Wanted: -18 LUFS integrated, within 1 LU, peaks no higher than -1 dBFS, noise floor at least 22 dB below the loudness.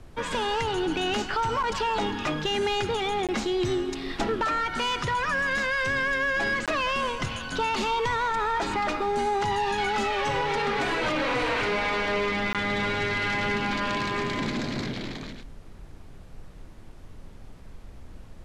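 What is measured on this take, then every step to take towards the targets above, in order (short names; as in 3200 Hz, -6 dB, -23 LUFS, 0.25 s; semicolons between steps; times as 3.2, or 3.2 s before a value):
dropouts 3; longest dropout 17 ms; noise floor -45 dBFS; noise floor target -49 dBFS; loudness -26.5 LUFS; peak -16.5 dBFS; loudness target -18.0 LUFS
-> interpolate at 3.27/6.66/12.53, 17 ms; noise print and reduce 6 dB; gain +8.5 dB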